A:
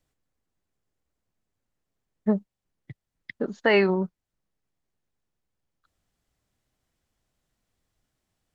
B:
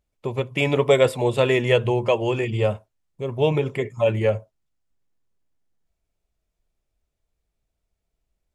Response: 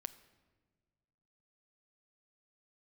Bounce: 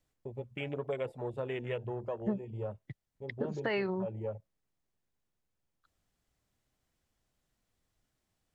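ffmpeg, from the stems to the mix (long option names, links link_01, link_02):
-filter_complex "[0:a]alimiter=limit=-13dB:level=0:latency=1:release=493,volume=-2.5dB[link_01];[1:a]afwtdn=0.0631,agate=range=-33dB:threshold=-33dB:ratio=3:detection=peak,volume=-15dB[link_02];[link_01][link_02]amix=inputs=2:normalize=0,acompressor=threshold=-34dB:ratio=2"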